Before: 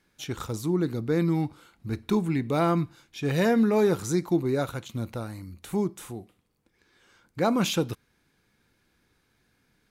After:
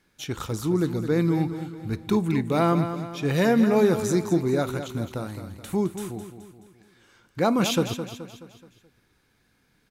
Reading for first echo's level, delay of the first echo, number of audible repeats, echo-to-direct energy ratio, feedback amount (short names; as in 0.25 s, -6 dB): -10.0 dB, 0.213 s, 4, -9.0 dB, 47%